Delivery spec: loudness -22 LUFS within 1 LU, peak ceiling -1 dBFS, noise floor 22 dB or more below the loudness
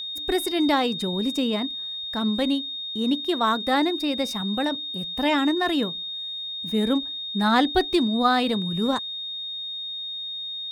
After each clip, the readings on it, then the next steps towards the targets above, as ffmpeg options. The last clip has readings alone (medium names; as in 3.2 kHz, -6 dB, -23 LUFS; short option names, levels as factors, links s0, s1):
steady tone 3.7 kHz; tone level -30 dBFS; loudness -24.5 LUFS; peak level -8.0 dBFS; loudness target -22.0 LUFS
-> -af "bandreject=f=3700:w=30"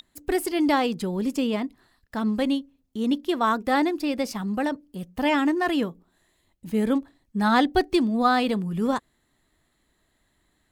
steady tone not found; loudness -25.0 LUFS; peak level -7.5 dBFS; loudness target -22.0 LUFS
-> -af "volume=1.41"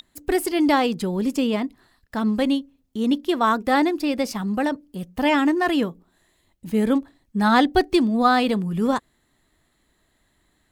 loudness -22.0 LUFS; peak level -4.5 dBFS; noise floor -67 dBFS